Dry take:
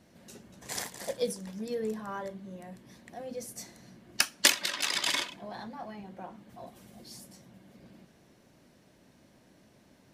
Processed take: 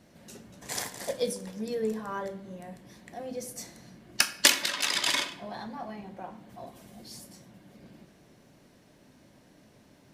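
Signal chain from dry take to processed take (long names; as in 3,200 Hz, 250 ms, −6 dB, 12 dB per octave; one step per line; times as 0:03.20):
rectangular room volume 200 cubic metres, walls mixed, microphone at 0.33 metres
level +2 dB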